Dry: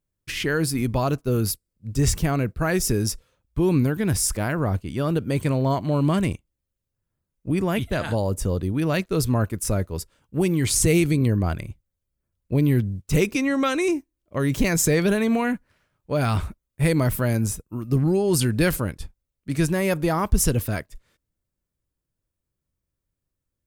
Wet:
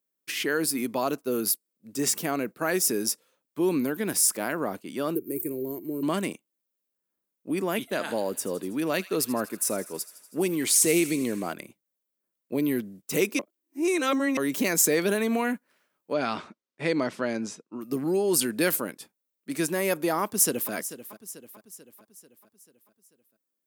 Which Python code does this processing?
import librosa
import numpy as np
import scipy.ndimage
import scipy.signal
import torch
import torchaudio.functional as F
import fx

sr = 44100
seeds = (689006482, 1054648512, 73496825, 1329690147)

y = fx.curve_eq(x, sr, hz=(110.0, 230.0, 360.0, 610.0, 1200.0, 2300.0, 3400.0, 15000.0), db=(0, -12, 7, -20, -24, -14, -29, 14), at=(5.15, 6.03))
y = fx.echo_wet_highpass(y, sr, ms=81, feedback_pct=72, hz=1800.0, wet_db=-15, at=(8.08, 11.52), fade=0.02)
y = fx.lowpass(y, sr, hz=5800.0, slope=24, at=(16.13, 17.81))
y = fx.echo_throw(y, sr, start_s=20.22, length_s=0.5, ms=440, feedback_pct=55, wet_db=-13.5)
y = fx.edit(y, sr, fx.reverse_span(start_s=13.39, length_s=0.98), tone=tone)
y = scipy.signal.sosfilt(scipy.signal.butter(4, 230.0, 'highpass', fs=sr, output='sos'), y)
y = fx.high_shelf(y, sr, hz=11000.0, db=11.5)
y = y * 10.0 ** (-2.5 / 20.0)